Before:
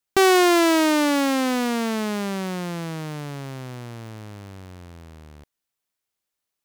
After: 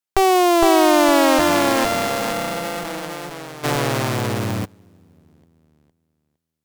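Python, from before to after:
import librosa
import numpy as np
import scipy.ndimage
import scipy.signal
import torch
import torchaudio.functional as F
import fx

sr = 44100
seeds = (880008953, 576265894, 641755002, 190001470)

p1 = fx.sample_sort(x, sr, block=128, at=(1.38, 2.83), fade=0.02)
p2 = scipy.signal.sosfilt(scipy.signal.cheby1(2, 1.0, 160.0, 'highpass', fs=sr, output='sos'), p1)
p3 = fx.cheby_harmonics(p2, sr, harmonics=(3, 4), levels_db=(-7, -9), full_scale_db=-12.5)
p4 = p3 + fx.echo_feedback(p3, sr, ms=460, feedback_pct=24, wet_db=-3.5, dry=0)
p5 = fx.env_flatten(p4, sr, amount_pct=70, at=(3.63, 4.64), fade=0.02)
y = p5 * 10.0 ** (5.0 / 20.0)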